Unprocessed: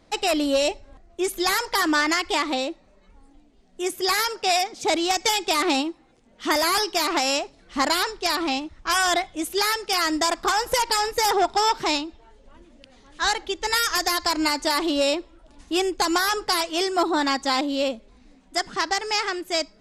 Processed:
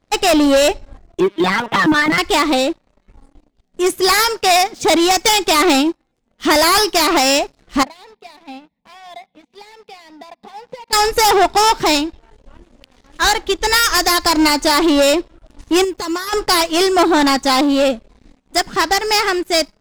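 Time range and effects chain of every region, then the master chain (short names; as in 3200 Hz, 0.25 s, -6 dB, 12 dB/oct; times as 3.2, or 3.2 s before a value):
1.2–2.18 LPC vocoder at 8 kHz pitch kept + HPF 140 Hz 24 dB/oct
7.83–10.93 compressor 2.5:1, threshold -35 dBFS + speaker cabinet 180–3300 Hz, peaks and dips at 220 Hz +6 dB, 310 Hz -3 dB, 610 Hz -9 dB, 1600 Hz -10 dB, 3000 Hz -9 dB + fixed phaser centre 350 Hz, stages 6
15.84–16.33 block floating point 7-bit + compressor 2.5:1, threshold -33 dBFS + notch comb 790 Hz
whole clip: low shelf 200 Hz +6 dB; sample leveller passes 3; upward expander 1.5:1, over -31 dBFS; gain +2.5 dB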